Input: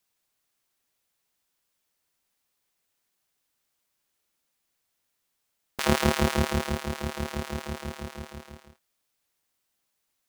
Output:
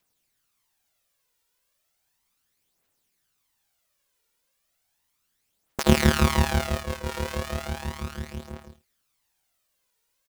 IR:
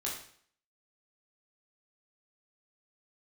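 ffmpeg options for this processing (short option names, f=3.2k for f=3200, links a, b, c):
-filter_complex "[0:a]asettb=1/sr,asplit=3[a][b][c];[a]atrim=end=5.834[d];[b]atrim=start=5.83:end=7.09,asetpts=PTS-STARTPTS,afade=t=in:d=0.004:c=qsin,afade=t=out:st=1.256:d=0.004:c=qsin,agate=range=-33dB:threshold=-28dB:ratio=3:detection=peak[e];[c]atrim=start=7.086[f];[d][e]acrossfade=d=0.004:c1=hsin:c2=qsin[g];[g][f]acrossfade=d=0.004:c1=qsin:c2=hsin,aphaser=in_gain=1:out_gain=1:delay=2.2:decay=0.53:speed=0.35:type=triangular,aecho=1:1:80:0.141,volume=1.5dB"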